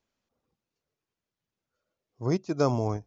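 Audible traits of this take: noise floor -90 dBFS; spectral tilt -7.0 dB/octave

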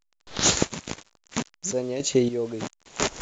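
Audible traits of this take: random-step tremolo, depth 70%; a quantiser's noise floor 8-bit, dither none; A-law

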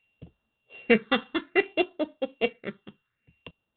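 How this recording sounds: a buzz of ramps at a fixed pitch in blocks of 16 samples; phasing stages 6, 0.6 Hz, lowest notch 600–2300 Hz; IMA ADPCM

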